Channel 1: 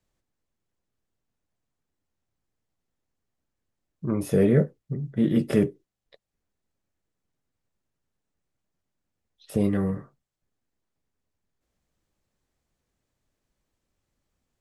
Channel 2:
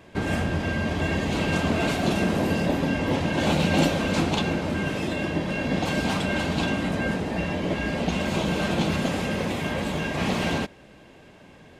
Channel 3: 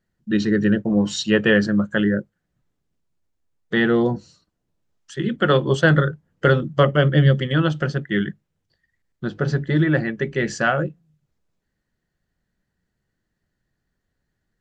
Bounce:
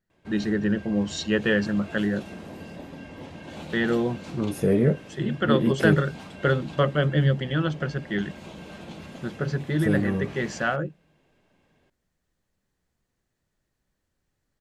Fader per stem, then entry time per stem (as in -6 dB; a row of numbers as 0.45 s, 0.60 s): -1.0 dB, -16.5 dB, -6.0 dB; 0.30 s, 0.10 s, 0.00 s